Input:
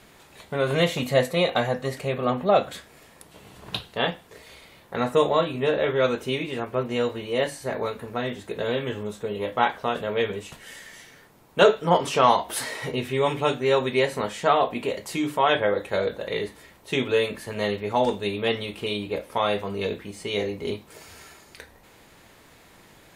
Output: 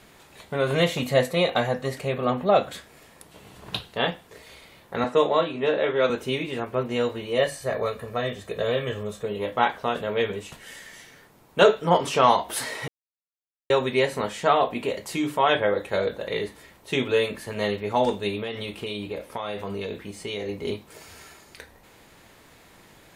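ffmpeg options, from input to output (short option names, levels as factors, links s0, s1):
-filter_complex "[0:a]asettb=1/sr,asplit=3[s0][s1][s2];[s0]atrim=end=5.044[s3];[s1]atrim=start=5.04:end=6.1,asetpts=PTS-STARTPTS,afade=t=in:d=0.004:c=qsin,afade=t=out:st=1.056:d=0.004:c=qsin,acrossover=split=170 7000:gain=0.224 1 0.158[s4][s5][s6];[s4][s5][s6]amix=inputs=3:normalize=0[s7];[s2]atrim=start=6.096[s8];[s3][s7]acrossfade=d=0.004:c1=hsin:c2=qsin[s9];[s9][s8]acrossfade=d=0.004:c1=qsin:c2=hsin,asettb=1/sr,asplit=3[s10][s11][s12];[s10]atrim=end=7.374[s13];[s11]atrim=start=7.37:end=9.25,asetpts=PTS-STARTPTS,afade=t=in:d=0.004:c=qsin,afade=t=out:st=1.876:d=0.004:c=qsin,aecho=1:1:1.7:0.5,atrim=end_sample=82908[s14];[s12]atrim=start=9.246[s15];[s13][s14]acrossfade=d=0.004:c1=hsin:c2=qsin[s16];[s16][s15]acrossfade=d=0.004:c1=qsin:c2=hsin,asettb=1/sr,asplit=3[s17][s18][s19];[s17]atrim=end=18.404[s20];[s18]atrim=start=18.4:end=20.49,asetpts=PTS-STARTPTS,afade=t=in:d=0.004:c=qsin,afade=t=out:st=2.086:d=0.004:c=qsin,acompressor=threshold=0.0447:ratio=6:attack=3.2:release=140:knee=1:detection=peak[s21];[s19]atrim=start=20.486[s22];[s20][s21]acrossfade=d=0.004:c1=hsin:c2=qsin[s23];[s23][s22]acrossfade=d=0.004:c1=qsin:c2=hsin,asplit=3[s24][s25][s26];[s24]atrim=end=12.88,asetpts=PTS-STARTPTS,afade=t=out:st=12.876:d=0.004:c=hsin[s27];[s25]atrim=start=12.88:end=13.7,asetpts=PTS-STARTPTS,volume=0[s28];[s26]atrim=start=13.7,asetpts=PTS-STARTPTS,afade=t=in:d=0.004:c=hsin[s29];[s27][s28][s29]concat=n=3:v=0:a=1"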